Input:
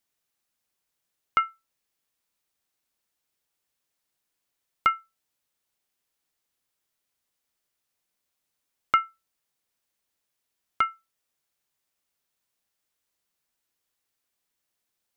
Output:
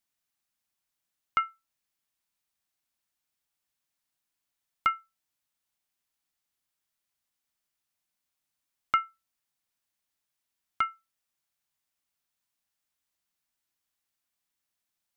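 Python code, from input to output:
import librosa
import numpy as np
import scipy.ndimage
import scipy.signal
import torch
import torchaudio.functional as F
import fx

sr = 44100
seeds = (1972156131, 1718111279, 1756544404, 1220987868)

y = fx.peak_eq(x, sr, hz=450.0, db=-8.0, octaves=0.61)
y = F.gain(torch.from_numpy(y), -3.5).numpy()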